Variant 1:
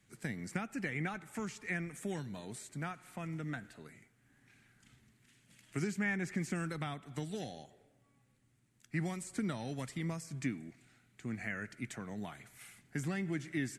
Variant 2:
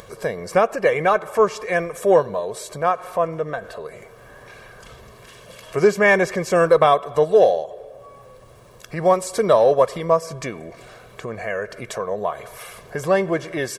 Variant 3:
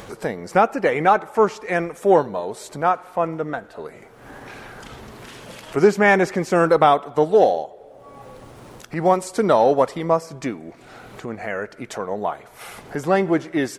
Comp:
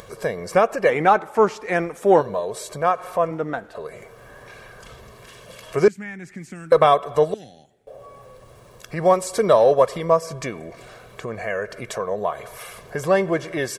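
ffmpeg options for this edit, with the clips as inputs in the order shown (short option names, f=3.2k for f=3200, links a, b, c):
-filter_complex "[2:a]asplit=2[a][b];[0:a]asplit=2[c][d];[1:a]asplit=5[e][f][g][h][i];[e]atrim=end=0.902[j];[a]atrim=start=0.898:end=2.212[k];[f]atrim=start=2.208:end=3.312[l];[b]atrim=start=3.308:end=3.752[m];[g]atrim=start=3.748:end=5.882[n];[c]atrim=start=5.878:end=6.722[o];[h]atrim=start=6.718:end=7.342[p];[d]atrim=start=7.338:end=7.872[q];[i]atrim=start=7.868[r];[j][k]acrossfade=d=0.004:c1=hsin:c2=hsin[s];[s][l]acrossfade=d=0.004:c1=hsin:c2=hsin[t];[t][m]acrossfade=d=0.004:c1=hsin:c2=hsin[u];[u][n]acrossfade=d=0.004:c1=hsin:c2=hsin[v];[v][o]acrossfade=d=0.004:c1=hsin:c2=hsin[w];[w][p]acrossfade=d=0.004:c1=hsin:c2=hsin[x];[x][q]acrossfade=d=0.004:c1=hsin:c2=hsin[y];[y][r]acrossfade=d=0.004:c1=hsin:c2=hsin"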